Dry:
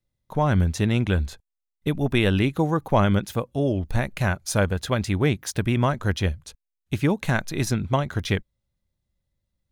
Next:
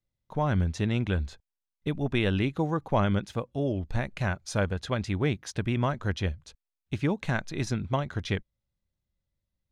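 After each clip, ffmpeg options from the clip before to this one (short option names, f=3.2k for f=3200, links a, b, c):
-af "lowpass=6.4k,volume=-5.5dB"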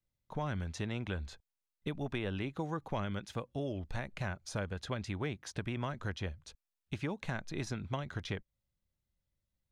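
-filter_complex "[0:a]acrossover=split=550|1300[a][b][c];[a]acompressor=threshold=-34dB:ratio=4[d];[b]acompressor=threshold=-41dB:ratio=4[e];[c]acompressor=threshold=-41dB:ratio=4[f];[d][e][f]amix=inputs=3:normalize=0,volume=-2.5dB"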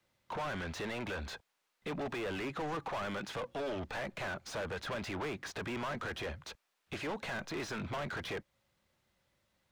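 -filter_complex "[0:a]acrossover=split=350|2500[a][b][c];[a]alimiter=level_in=14dB:limit=-24dB:level=0:latency=1,volume=-14dB[d];[d][b][c]amix=inputs=3:normalize=0,asplit=2[e][f];[f]highpass=f=720:p=1,volume=35dB,asoftclip=type=tanh:threshold=-23dB[g];[e][g]amix=inputs=2:normalize=0,lowpass=f=1.8k:p=1,volume=-6dB,volume=-6.5dB"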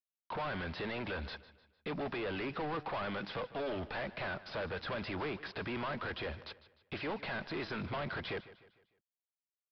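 -af "aresample=11025,aeval=exprs='val(0)*gte(abs(val(0)),0.00211)':c=same,aresample=44100,aecho=1:1:151|302|453|604:0.141|0.0593|0.0249|0.0105"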